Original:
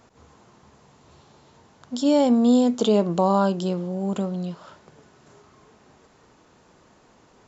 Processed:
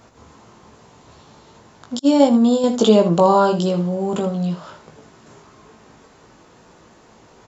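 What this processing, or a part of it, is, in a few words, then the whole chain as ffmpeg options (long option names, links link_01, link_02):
slapback doubling: -filter_complex "[0:a]asplit=3[link_01][link_02][link_03];[link_02]adelay=18,volume=-5dB[link_04];[link_03]adelay=79,volume=-11dB[link_05];[link_01][link_04][link_05]amix=inputs=3:normalize=0,asettb=1/sr,asplit=3[link_06][link_07][link_08];[link_06]atrim=end=1.994[link_09];[link_07]atrim=start=1.99:end=2.64,asetpts=PTS-STARTPTS,afade=type=in:duration=0.004:curve=qsin,afade=type=out:start_time=0.646:duration=0.004:curve=qsin,agate=range=-33dB:threshold=-13dB:ratio=3:detection=peak[link_10];[link_08]atrim=start=2.636[link_11];[link_09][link_10]acrossfade=duration=0.004:curve1=hsin:curve2=qsin[link_12];[link_12][link_11]acrossfade=duration=0.004:curve1=qsin:curve2=hsin,volume=5.5dB"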